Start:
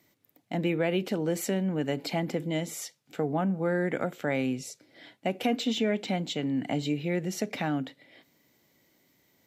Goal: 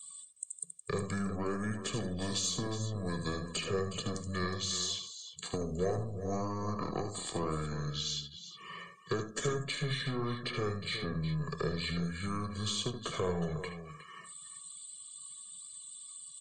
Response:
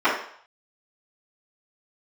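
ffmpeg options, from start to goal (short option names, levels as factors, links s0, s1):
-filter_complex "[0:a]asplit=2[s0][s1];[1:a]atrim=start_sample=2205,asetrate=57330,aresample=44100[s2];[s1][s2]afir=irnorm=-1:irlink=0,volume=0.0376[s3];[s0][s3]amix=inputs=2:normalize=0,aexciter=amount=1.2:drive=9.6:freq=5300,acrossover=split=220|470|1400[s4][s5][s6][s7];[s4]acompressor=threshold=0.00631:ratio=4[s8];[s5]acompressor=threshold=0.0126:ratio=4[s9];[s6]acompressor=threshold=0.02:ratio=4[s10];[s7]acompressor=threshold=0.00355:ratio=4[s11];[s8][s9][s10][s11]amix=inputs=4:normalize=0,aeval=exprs='0.112*(cos(1*acos(clip(val(0)/0.112,-1,1)))-cos(1*PI/2))+0.00501*(cos(8*acos(clip(val(0)/0.112,-1,1)))-cos(8*PI/2))':c=same,bass=f=250:g=-7,treble=f=4000:g=10,aecho=1:1:1:0.76,aecho=1:1:43.73|209.9:0.398|0.282,asetrate=25442,aresample=44100,afftdn=nr=19:nf=-54"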